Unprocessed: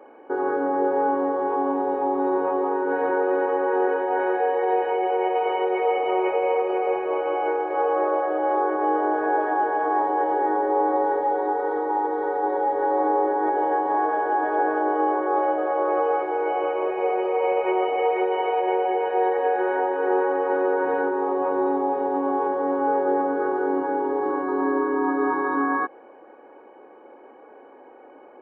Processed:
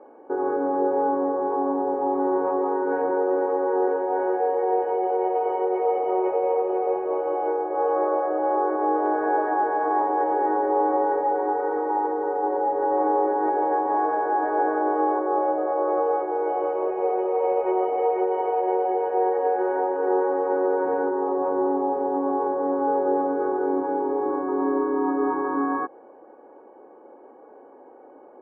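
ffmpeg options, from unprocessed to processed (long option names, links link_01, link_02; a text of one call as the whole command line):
ffmpeg -i in.wav -af "asetnsamples=nb_out_samples=441:pad=0,asendcmd='2.06 lowpass f 1400;3.02 lowpass f 1000;7.82 lowpass f 1300;9.06 lowpass f 1700;12.12 lowpass f 1200;12.92 lowpass f 1500;15.19 lowpass f 1100',lowpass=1100" out.wav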